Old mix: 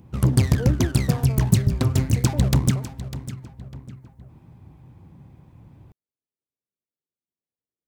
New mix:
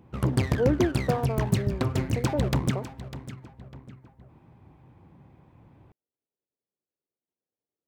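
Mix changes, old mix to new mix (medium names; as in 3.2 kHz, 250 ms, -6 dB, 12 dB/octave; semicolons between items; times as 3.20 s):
speech +7.0 dB; master: add tone controls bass -8 dB, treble -11 dB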